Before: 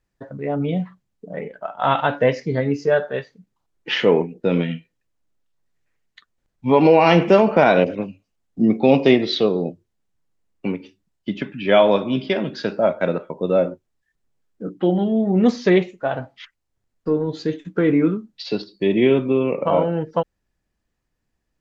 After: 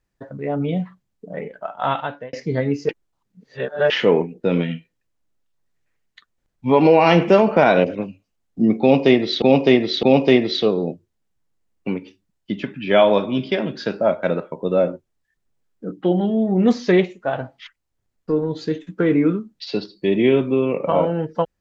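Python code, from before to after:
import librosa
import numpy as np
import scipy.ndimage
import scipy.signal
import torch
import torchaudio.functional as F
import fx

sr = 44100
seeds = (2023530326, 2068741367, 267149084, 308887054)

y = fx.edit(x, sr, fx.fade_out_span(start_s=1.72, length_s=0.61),
    fx.reverse_span(start_s=2.89, length_s=1.01),
    fx.repeat(start_s=8.81, length_s=0.61, count=3), tone=tone)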